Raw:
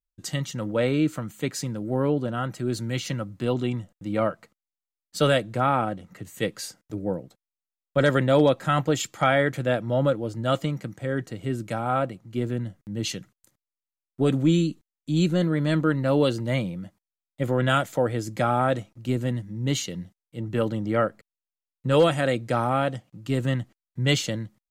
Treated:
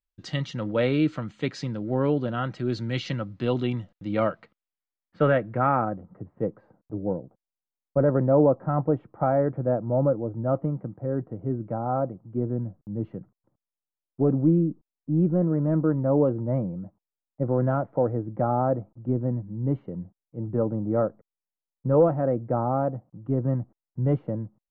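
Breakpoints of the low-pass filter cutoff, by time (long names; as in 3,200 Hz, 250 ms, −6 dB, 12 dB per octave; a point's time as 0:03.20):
low-pass filter 24 dB per octave
0:04.27 4,600 Hz
0:05.20 1,900 Hz
0:05.71 1,900 Hz
0:06.11 1,000 Hz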